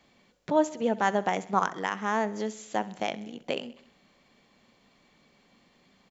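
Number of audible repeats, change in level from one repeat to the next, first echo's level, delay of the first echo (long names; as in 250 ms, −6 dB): 4, −4.5 dB, −18.5 dB, 65 ms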